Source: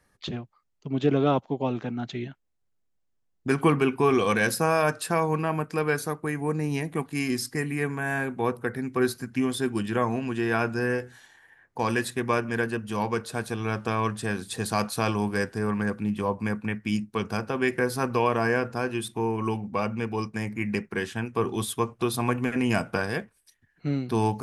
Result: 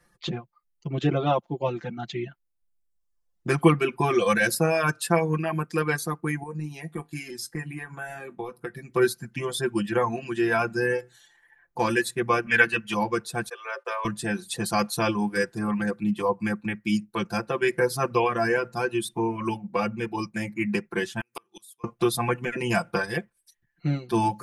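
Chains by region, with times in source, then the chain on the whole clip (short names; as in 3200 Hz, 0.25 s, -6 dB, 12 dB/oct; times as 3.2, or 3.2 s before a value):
6.43–8.89 transient shaper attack +7 dB, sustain -2 dB + compressor 4:1, threshold -28 dBFS + resonator 51 Hz, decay 0.2 s, mix 70%
12.46–12.94 bell 2300 Hz +14 dB 1.8 oct + notch comb 180 Hz
13.49–14.05 rippled Chebyshev high-pass 380 Hz, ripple 6 dB + gate -50 dBFS, range -16 dB
21.2–21.84 tilt +4 dB/oct + flipped gate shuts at -23 dBFS, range -30 dB
whole clip: reverb removal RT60 1.1 s; comb 5.8 ms, depth 94%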